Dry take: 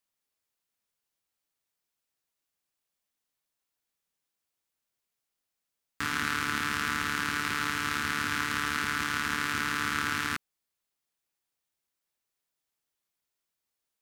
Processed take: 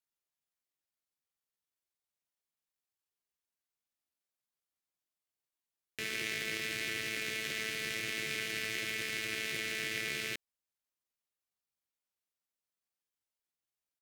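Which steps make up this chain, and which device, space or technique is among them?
chipmunk voice (pitch shifter +7 semitones)
level −6.5 dB

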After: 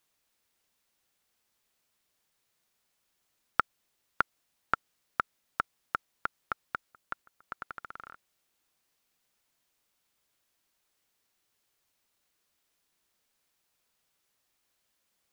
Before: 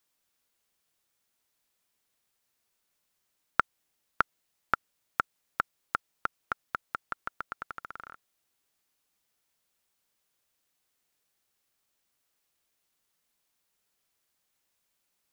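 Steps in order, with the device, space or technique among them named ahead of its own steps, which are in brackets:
worn cassette (low-pass filter 6,000 Hz; tape wow and flutter 24 cents; tape dropouts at 0:06.91/0:07.22, 208 ms −23 dB; white noise bed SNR 35 dB)
level −1.5 dB

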